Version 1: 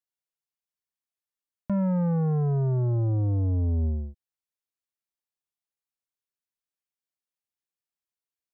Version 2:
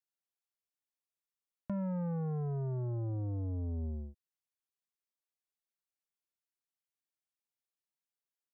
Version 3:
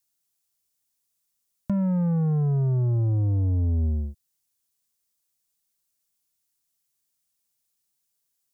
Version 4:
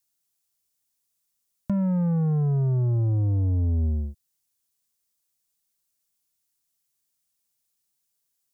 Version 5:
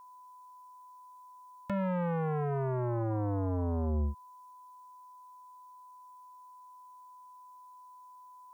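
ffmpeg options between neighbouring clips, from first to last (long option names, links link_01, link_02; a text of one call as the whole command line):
ffmpeg -i in.wav -af "lowshelf=frequency=83:gain=-6.5,acompressor=threshold=-30dB:ratio=2.5,volume=-5.5dB" out.wav
ffmpeg -i in.wav -af "bass=frequency=250:gain=8,treble=frequency=4000:gain=13,volume=6dB" out.wav
ffmpeg -i in.wav -af anull out.wav
ffmpeg -i in.wav -af "aeval=exprs='0.133*(cos(1*acos(clip(val(0)/0.133,-1,1)))-cos(1*PI/2))+0.0668*(cos(5*acos(clip(val(0)/0.133,-1,1)))-cos(5*PI/2))':channel_layout=same,aeval=exprs='val(0)+0.00794*sin(2*PI*1000*n/s)':channel_layout=same,volume=-8.5dB" out.wav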